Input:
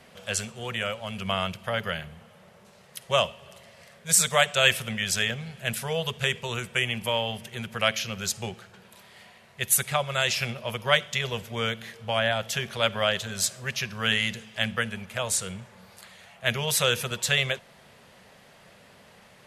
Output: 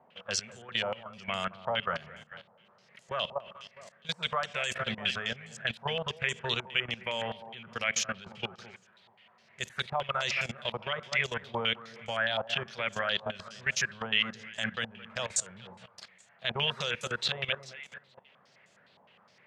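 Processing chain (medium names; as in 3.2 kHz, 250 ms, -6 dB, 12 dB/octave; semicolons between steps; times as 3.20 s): high-pass 120 Hz 12 dB/octave; echo whose repeats swap between lows and highs 215 ms, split 1.5 kHz, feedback 51%, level -11 dB; level held to a coarse grid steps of 16 dB; step-sequenced low-pass 9.7 Hz 900–7100 Hz; trim -2 dB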